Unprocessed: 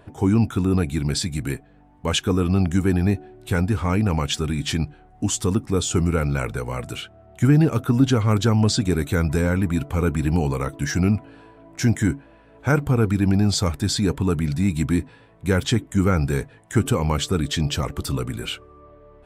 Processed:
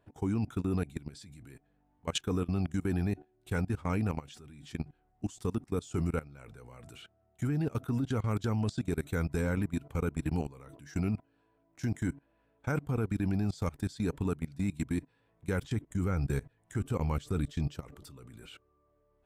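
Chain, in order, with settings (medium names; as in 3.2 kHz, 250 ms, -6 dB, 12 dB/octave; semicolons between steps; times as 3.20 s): 15.62–17.72 s: bass shelf 100 Hz +8.5 dB; level held to a coarse grid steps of 21 dB; trim -8.5 dB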